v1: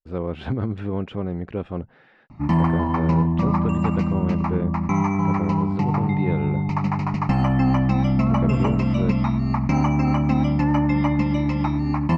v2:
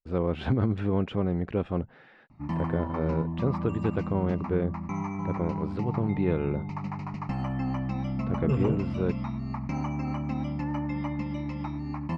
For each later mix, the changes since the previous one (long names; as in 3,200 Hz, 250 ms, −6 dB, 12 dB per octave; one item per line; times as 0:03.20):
background −11.5 dB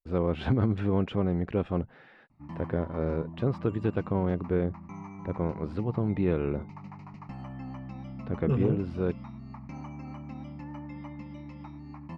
background −10.0 dB